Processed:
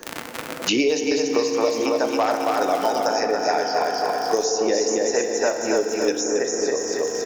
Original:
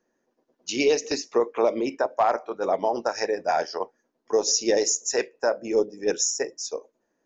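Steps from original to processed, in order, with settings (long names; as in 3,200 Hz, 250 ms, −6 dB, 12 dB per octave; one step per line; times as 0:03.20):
surface crackle 65 per second −35 dBFS
repeating echo 275 ms, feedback 42%, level −4 dB
feedback delay network reverb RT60 3.5 s, high-frequency decay 0.4×, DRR 5 dB
multiband upward and downward compressor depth 100%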